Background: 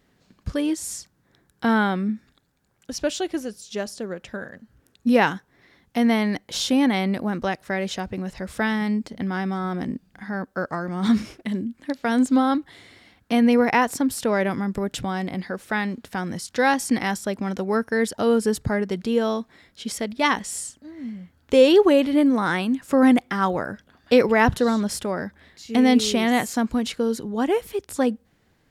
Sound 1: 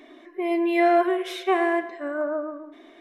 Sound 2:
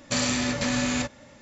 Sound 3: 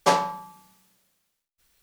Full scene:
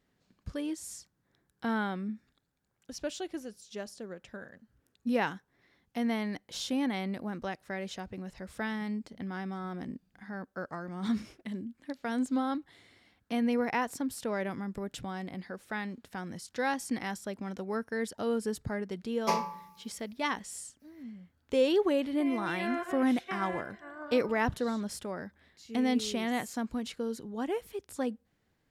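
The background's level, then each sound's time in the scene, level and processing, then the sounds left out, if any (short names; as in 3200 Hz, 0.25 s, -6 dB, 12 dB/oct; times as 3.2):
background -11.5 dB
19.21 add 3 -11.5 dB + ripple EQ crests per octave 0.83, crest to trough 12 dB
21.81 add 1 -16.5 dB + spectral limiter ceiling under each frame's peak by 14 dB
not used: 2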